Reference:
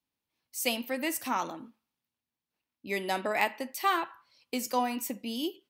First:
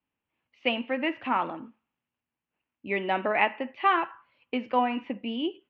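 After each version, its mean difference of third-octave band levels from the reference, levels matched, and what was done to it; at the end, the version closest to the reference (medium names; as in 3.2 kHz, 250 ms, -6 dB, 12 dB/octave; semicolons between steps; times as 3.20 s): 7.0 dB: elliptic low-pass 2.9 kHz, stop band 70 dB; trim +4.5 dB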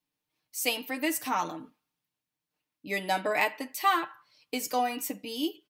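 1.5 dB: comb 6.6 ms, depth 69%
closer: second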